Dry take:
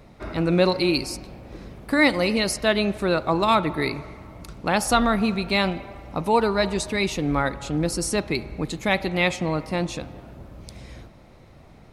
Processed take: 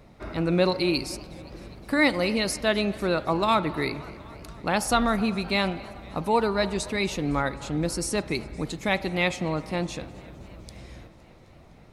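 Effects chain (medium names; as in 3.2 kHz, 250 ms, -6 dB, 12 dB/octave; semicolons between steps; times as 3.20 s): modulated delay 257 ms, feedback 75%, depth 149 cents, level -23 dB; trim -3 dB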